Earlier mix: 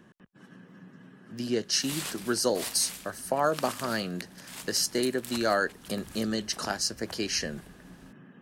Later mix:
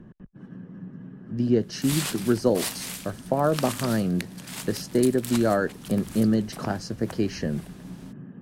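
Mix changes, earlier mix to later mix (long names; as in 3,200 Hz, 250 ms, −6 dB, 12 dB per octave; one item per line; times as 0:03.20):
speech: add spectral tilt −4.5 dB per octave
background +5.5 dB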